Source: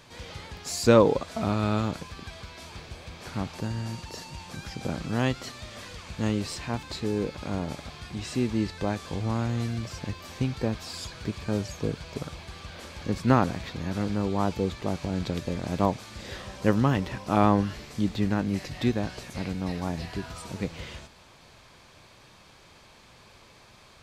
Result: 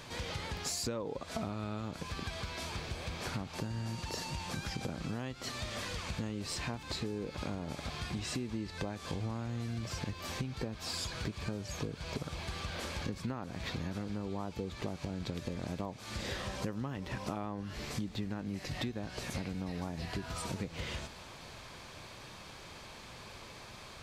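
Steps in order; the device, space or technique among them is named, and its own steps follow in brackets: serial compression, leveller first (compression 2.5:1, threshold -30 dBFS, peak gain reduction 12 dB; compression 5:1, threshold -39 dBFS, peak gain reduction 14.5 dB); trim +4 dB

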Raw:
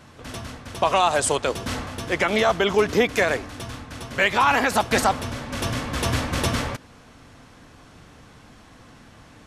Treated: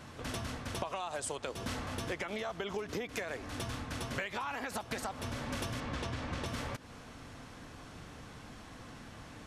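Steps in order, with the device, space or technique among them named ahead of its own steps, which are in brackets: serial compression, leveller first (compression 3:1, threshold -21 dBFS, peak gain reduction 6 dB; compression 10:1, threshold -33 dBFS, peak gain reduction 14.5 dB); 5.80–6.46 s: distance through air 71 m; trim -1.5 dB

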